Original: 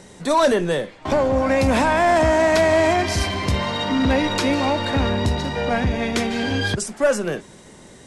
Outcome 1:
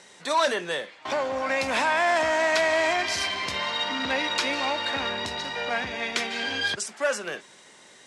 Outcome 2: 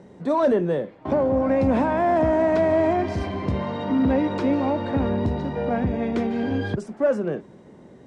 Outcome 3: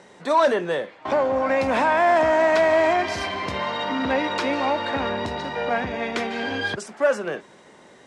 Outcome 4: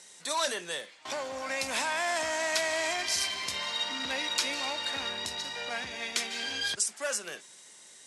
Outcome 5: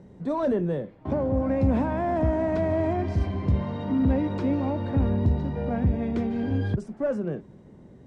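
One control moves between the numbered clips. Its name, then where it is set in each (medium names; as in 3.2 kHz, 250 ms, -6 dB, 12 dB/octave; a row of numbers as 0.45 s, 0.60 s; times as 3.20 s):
band-pass filter, frequency: 2.9 kHz, 270 Hz, 1.1 kHz, 7.9 kHz, 110 Hz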